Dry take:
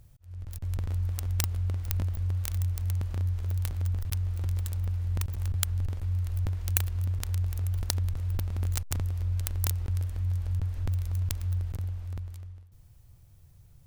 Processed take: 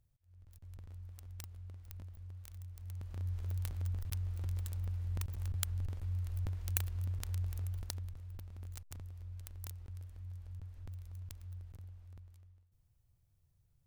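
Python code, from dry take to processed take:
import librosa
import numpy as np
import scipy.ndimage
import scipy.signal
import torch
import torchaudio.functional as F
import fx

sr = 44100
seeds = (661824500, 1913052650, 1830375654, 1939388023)

y = fx.gain(x, sr, db=fx.line((2.69, -19.5), (3.35, -8.0), (7.57, -8.0), (8.28, -17.5)))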